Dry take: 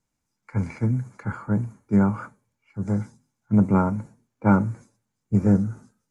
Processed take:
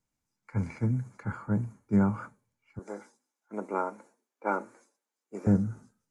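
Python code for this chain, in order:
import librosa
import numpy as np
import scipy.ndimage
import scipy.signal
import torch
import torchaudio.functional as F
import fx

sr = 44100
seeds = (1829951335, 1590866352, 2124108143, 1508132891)

y = fx.highpass(x, sr, hz=350.0, slope=24, at=(2.79, 5.47))
y = F.gain(torch.from_numpy(y), -5.0).numpy()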